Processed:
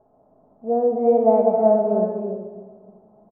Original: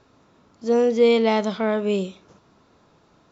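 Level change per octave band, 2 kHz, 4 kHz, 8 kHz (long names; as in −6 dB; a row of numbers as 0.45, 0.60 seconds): below −20 dB, below −40 dB, can't be measured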